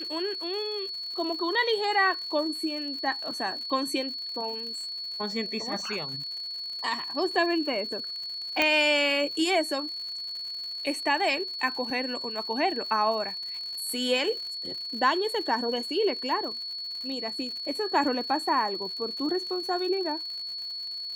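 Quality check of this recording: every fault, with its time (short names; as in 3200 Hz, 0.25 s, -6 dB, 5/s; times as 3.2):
crackle 120/s -37 dBFS
tone 4400 Hz -33 dBFS
8.62 pop -9 dBFS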